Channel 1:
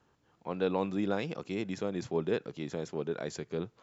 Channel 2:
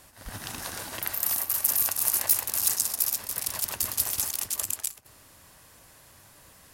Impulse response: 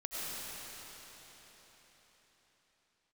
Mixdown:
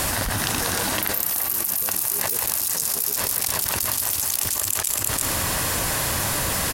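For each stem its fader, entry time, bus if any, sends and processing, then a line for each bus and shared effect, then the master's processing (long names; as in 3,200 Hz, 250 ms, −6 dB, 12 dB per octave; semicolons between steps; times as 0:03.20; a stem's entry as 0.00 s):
−16.0 dB, 0.00 s, no send, no echo send, no processing
+2.5 dB, 0.00 s, no send, echo send −12 dB, downward compressor, threshold −27 dBFS, peak gain reduction 11 dB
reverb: not used
echo: single-tap delay 340 ms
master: envelope flattener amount 100%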